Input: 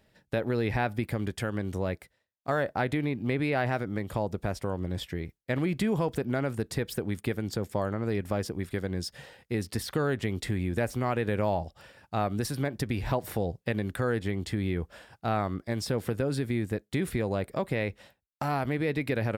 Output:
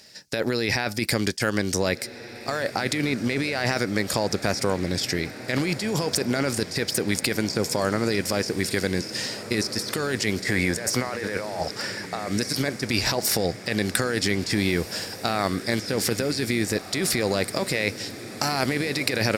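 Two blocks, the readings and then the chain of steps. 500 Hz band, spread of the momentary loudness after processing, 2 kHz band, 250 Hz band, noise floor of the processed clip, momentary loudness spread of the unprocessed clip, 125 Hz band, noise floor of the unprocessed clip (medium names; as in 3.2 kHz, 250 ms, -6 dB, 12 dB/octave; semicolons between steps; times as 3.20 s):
+4.0 dB, 5 LU, +9.5 dB, +4.5 dB, -39 dBFS, 6 LU, +1.0 dB, -76 dBFS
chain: frequency weighting D; time-frequency box 10.42–12.28 s, 430–2300 Hz +8 dB; resonant high shelf 4.1 kHz +7.5 dB, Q 3; compressor with a negative ratio -31 dBFS, ratio -1; echo that smears into a reverb 1714 ms, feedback 63%, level -14 dB; trim +5.5 dB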